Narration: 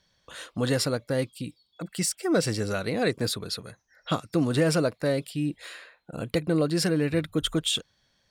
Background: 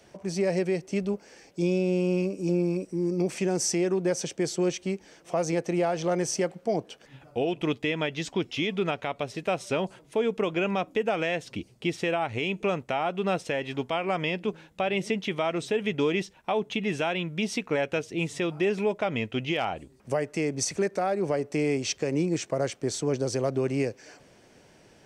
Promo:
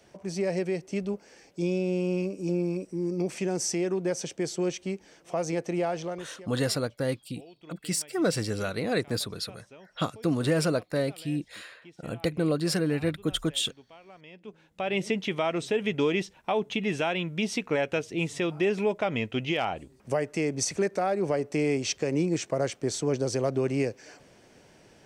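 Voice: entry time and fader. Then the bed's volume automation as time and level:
5.90 s, −2.0 dB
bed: 0:05.96 −2.5 dB
0:06.49 −23 dB
0:14.21 −23 dB
0:14.95 0 dB

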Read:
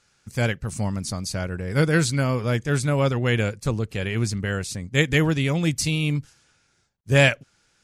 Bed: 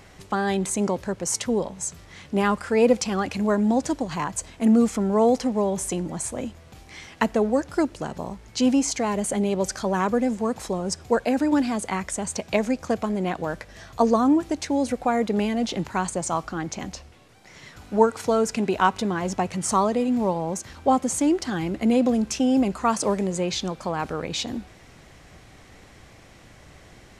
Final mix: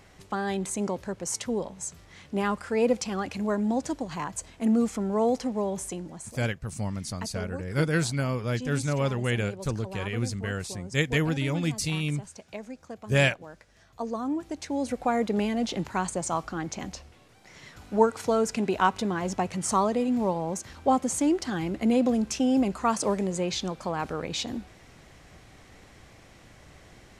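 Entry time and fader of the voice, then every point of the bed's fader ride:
6.00 s, −5.5 dB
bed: 0:05.76 −5.5 dB
0:06.55 −16.5 dB
0:13.75 −16.5 dB
0:15.07 −3 dB

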